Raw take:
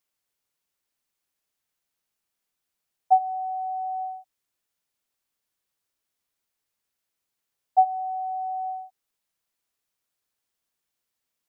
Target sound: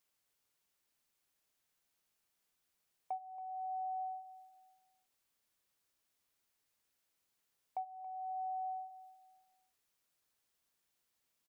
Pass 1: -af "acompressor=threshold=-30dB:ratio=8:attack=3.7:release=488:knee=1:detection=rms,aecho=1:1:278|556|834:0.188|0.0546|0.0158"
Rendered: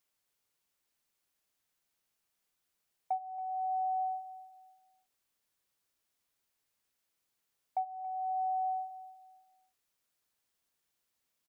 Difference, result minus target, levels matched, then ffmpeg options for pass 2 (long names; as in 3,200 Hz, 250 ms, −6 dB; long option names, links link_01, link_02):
downward compressor: peak gain reduction −7 dB
-af "acompressor=threshold=-38dB:ratio=8:attack=3.7:release=488:knee=1:detection=rms,aecho=1:1:278|556|834:0.188|0.0546|0.0158"